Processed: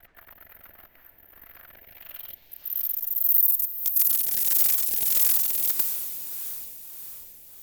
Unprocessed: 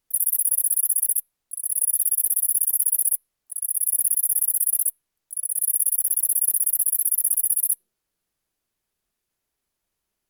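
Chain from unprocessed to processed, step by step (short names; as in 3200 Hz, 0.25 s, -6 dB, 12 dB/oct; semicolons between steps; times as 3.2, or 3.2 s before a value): slices in reverse order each 99 ms, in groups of 2; high shelf 6200 Hz +7.5 dB; limiter -20.5 dBFS, peak gain reduction 19.5 dB; low-pass sweep 1300 Hz -> 13000 Hz, 2.25–5.28; sine folder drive 20 dB, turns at -12 dBFS; diffused feedback echo 0.646 s, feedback 53%, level -8.5 dB; rotary speaker horn 6.7 Hz, later 1.2 Hz, at 0.64; speed mistake 33 rpm record played at 45 rpm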